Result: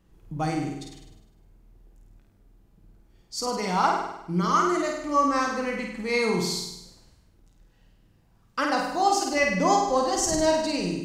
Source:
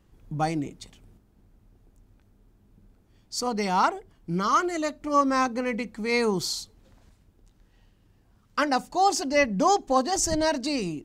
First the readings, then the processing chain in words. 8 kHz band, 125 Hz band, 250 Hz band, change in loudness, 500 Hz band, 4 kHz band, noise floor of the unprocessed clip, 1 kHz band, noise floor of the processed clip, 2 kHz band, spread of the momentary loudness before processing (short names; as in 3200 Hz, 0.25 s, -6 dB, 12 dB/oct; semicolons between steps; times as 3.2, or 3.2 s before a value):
+0.5 dB, +2.0 dB, 0.0 dB, +0.5 dB, +1.0 dB, +0.5 dB, -62 dBFS, +0.5 dB, -61 dBFS, +1.0 dB, 11 LU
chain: on a send: flutter echo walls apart 8.7 m, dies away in 0.85 s; on the sum: shoebox room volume 370 m³, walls furnished, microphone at 0.7 m; gain -2.5 dB